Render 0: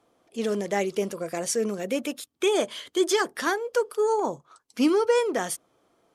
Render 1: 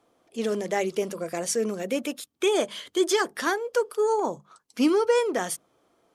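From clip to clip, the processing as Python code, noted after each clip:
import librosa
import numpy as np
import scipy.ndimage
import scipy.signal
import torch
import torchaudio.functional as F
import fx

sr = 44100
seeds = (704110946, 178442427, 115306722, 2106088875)

y = fx.hum_notches(x, sr, base_hz=50, count=4)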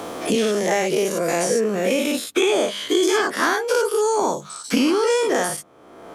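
y = fx.spec_dilate(x, sr, span_ms=120)
y = fx.band_squash(y, sr, depth_pct=100)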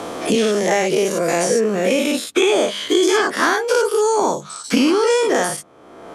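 y = scipy.signal.sosfilt(scipy.signal.butter(2, 11000.0, 'lowpass', fs=sr, output='sos'), x)
y = F.gain(torch.from_numpy(y), 3.0).numpy()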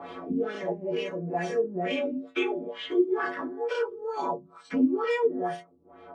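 y = fx.stiff_resonator(x, sr, f0_hz=85.0, decay_s=0.41, stiffness=0.008)
y = fx.filter_lfo_lowpass(y, sr, shape='sine', hz=2.2, low_hz=230.0, high_hz=3000.0, q=1.9)
y = F.gain(torch.from_numpy(y), -2.5).numpy()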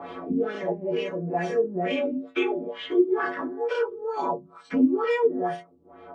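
y = fx.high_shelf(x, sr, hz=4300.0, db=-7.5)
y = F.gain(torch.from_numpy(y), 3.0).numpy()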